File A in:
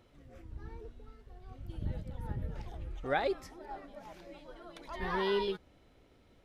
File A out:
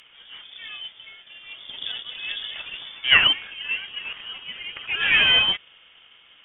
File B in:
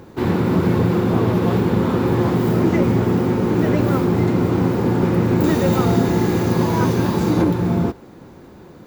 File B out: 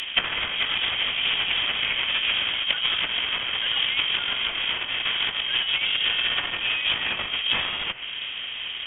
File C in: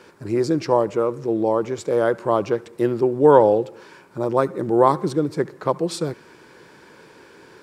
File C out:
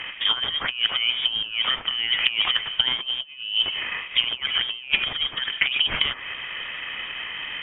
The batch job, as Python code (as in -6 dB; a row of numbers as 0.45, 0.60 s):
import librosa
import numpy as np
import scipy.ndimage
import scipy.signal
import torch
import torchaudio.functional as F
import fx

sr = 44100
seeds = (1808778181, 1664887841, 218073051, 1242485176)

y = scipy.ndimage.median_filter(x, 15, mode='constant')
y = fx.highpass(y, sr, hz=1000.0, slope=6)
y = fx.over_compress(y, sr, threshold_db=-32.0, ratio=-0.5)
y = fx.freq_invert(y, sr, carrier_hz=3500)
y = fx.env_lowpass_down(y, sr, base_hz=1500.0, full_db=-28.0)
y = y * 10.0 ** (-26 / 20.0) / np.sqrt(np.mean(np.square(y)))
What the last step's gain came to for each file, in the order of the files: +21.5, +13.5, +15.5 dB